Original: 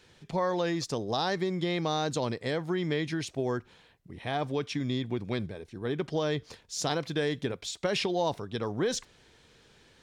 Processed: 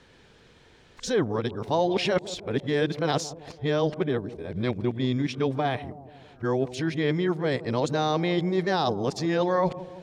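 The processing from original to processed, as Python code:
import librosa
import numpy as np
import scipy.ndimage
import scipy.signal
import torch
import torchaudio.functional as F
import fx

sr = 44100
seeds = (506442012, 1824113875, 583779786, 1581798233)

y = x[::-1].copy()
y = fx.high_shelf(y, sr, hz=4500.0, db=-9.5)
y = fx.echo_bbd(y, sr, ms=164, stages=1024, feedback_pct=58, wet_db=-15.5)
y = y * librosa.db_to_amplitude(5.0)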